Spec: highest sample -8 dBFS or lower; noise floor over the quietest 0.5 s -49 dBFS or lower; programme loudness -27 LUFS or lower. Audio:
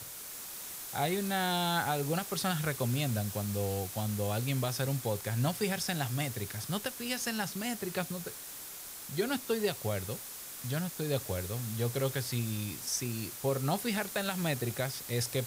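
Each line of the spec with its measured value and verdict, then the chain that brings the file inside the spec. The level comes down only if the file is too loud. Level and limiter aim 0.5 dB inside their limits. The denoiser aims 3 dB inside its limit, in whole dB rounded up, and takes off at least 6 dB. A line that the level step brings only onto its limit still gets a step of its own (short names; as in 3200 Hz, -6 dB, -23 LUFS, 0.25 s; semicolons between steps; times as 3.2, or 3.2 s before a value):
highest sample -19.0 dBFS: OK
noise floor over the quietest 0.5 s -45 dBFS: fail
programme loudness -33.5 LUFS: OK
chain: denoiser 7 dB, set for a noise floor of -45 dBFS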